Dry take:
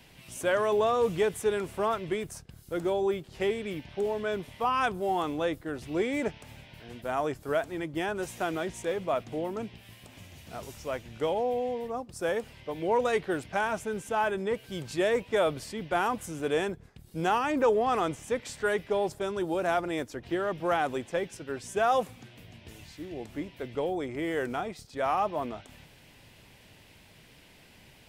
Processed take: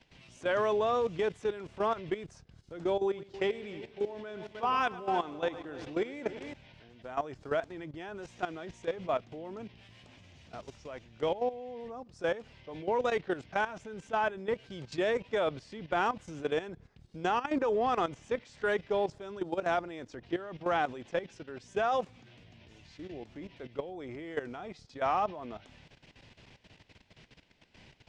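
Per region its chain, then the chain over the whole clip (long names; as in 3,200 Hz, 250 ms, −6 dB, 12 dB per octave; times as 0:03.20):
0:03.02–0:06.54: low-shelf EQ 110 Hz −7.5 dB + echo machine with several playback heads 104 ms, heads first and third, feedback 40%, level −13 dB
whole clip: low-pass filter 6,300 Hz 24 dB per octave; output level in coarse steps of 14 dB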